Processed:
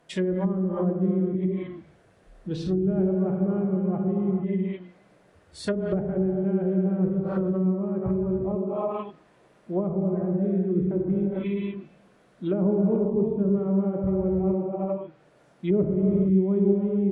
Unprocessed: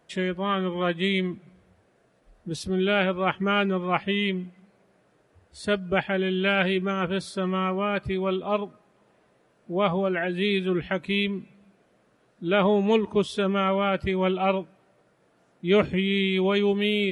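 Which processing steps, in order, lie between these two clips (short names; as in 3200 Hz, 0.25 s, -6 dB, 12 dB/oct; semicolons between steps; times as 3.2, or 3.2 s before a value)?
non-linear reverb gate 0.49 s flat, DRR -1 dB; dynamic EQ 2800 Hz, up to -6 dB, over -40 dBFS, Q 1.1; treble ducked by the level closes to 330 Hz, closed at -20 dBFS; gain +1 dB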